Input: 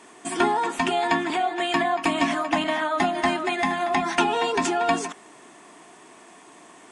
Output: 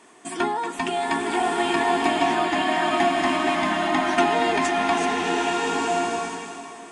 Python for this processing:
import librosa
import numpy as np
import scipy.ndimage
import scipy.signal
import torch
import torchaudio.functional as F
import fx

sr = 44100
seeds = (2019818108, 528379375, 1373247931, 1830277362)

y = fx.rev_bloom(x, sr, seeds[0], attack_ms=1240, drr_db=-3.0)
y = y * 10.0 ** (-3.0 / 20.0)